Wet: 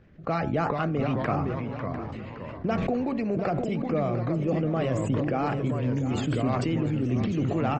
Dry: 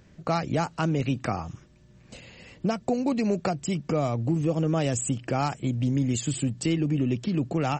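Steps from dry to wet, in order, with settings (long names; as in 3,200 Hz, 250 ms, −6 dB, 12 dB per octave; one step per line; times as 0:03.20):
low-pass filter 2,200 Hz 12 dB per octave
notch filter 940 Hz, Q 7.4
hum removal 93.7 Hz, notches 20
harmonic and percussive parts rebalanced harmonic −5 dB
delay with pitch and tempo change per echo 396 ms, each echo −2 semitones, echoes 3, each echo −6 dB
on a send: repeating echo 699 ms, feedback 31%, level −13 dB
on the sum: level that may fall only so fast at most 22 dB per second
level +1 dB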